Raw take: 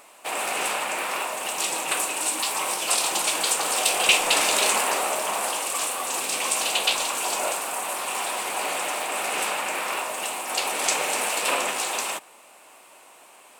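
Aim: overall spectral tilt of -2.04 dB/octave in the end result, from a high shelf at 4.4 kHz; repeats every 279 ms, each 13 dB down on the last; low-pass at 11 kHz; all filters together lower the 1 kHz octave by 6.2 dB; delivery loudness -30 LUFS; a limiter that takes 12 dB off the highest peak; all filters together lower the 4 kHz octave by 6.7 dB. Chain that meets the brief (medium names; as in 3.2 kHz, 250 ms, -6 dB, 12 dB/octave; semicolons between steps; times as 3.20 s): low-pass 11 kHz; peaking EQ 1 kHz -7.5 dB; peaking EQ 4 kHz -5 dB; treble shelf 4.4 kHz -7 dB; peak limiter -23 dBFS; feedback delay 279 ms, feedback 22%, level -13 dB; trim +2 dB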